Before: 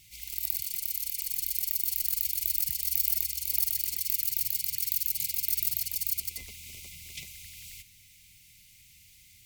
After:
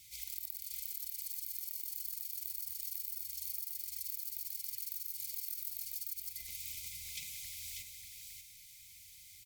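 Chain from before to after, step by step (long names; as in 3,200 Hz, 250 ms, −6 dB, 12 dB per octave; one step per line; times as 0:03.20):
guitar amp tone stack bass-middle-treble 5-5-5
on a send at −15.5 dB: convolution reverb RT60 0.50 s, pre-delay 82 ms
on the sum: downward compressor 6 to 1, threshold −45 dBFS, peak gain reduction 17 dB
notch filter 2,800 Hz, Q 9.8
single-tap delay 590 ms −5 dB
level +6 dB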